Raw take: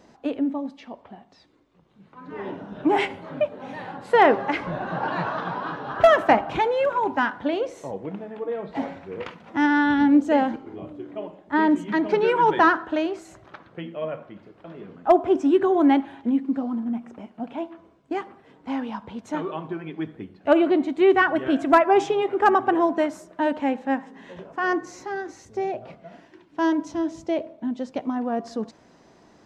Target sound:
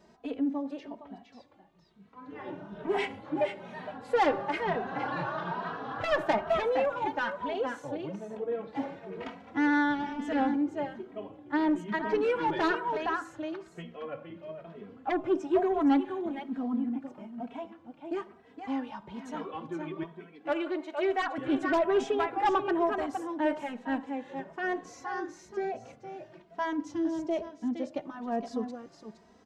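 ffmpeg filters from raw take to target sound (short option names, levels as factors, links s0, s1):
-filter_complex "[0:a]asettb=1/sr,asplit=3[s0][s1][s2];[s0]atrim=end=20.034[s3];[s1]atrim=start=20.03:end=21.38,asetpts=PTS-STARTPTS,afade=t=in:d=0.004:c=qsin,afade=t=out:st=1.346:d=0.004:c=qsin,highpass=530[s4];[s2]atrim=start=21.376[s5];[s3][s4]acrossfade=d=0.004:c1=hsin:c2=qsin[s6];[s6][s5]acrossfade=d=0.004:c1=qsin:c2=hsin,asplit=2[s7][s8];[s8]aecho=0:1:465:0.398[s9];[s7][s9]amix=inputs=2:normalize=0,asoftclip=type=tanh:threshold=0.211,asplit=2[s10][s11];[s11]adelay=2.8,afreqshift=1.1[s12];[s10][s12]amix=inputs=2:normalize=1,volume=0.668"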